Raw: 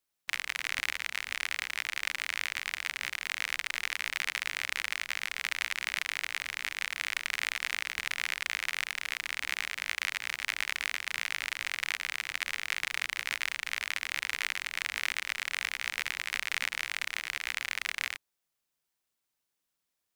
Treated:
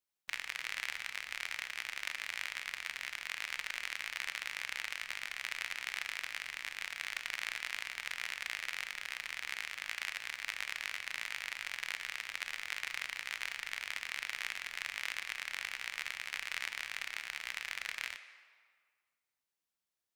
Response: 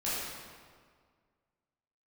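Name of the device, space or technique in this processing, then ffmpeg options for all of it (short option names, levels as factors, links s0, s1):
filtered reverb send: -filter_complex "[0:a]asplit=2[s0][s1];[s1]highpass=440,lowpass=8600[s2];[1:a]atrim=start_sample=2205[s3];[s2][s3]afir=irnorm=-1:irlink=0,volume=0.188[s4];[s0][s4]amix=inputs=2:normalize=0,volume=0.422"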